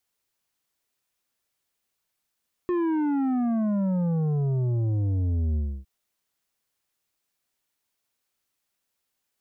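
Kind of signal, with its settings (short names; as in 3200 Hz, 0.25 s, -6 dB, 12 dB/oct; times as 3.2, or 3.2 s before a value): sub drop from 360 Hz, over 3.16 s, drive 8.5 dB, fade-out 0.29 s, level -23 dB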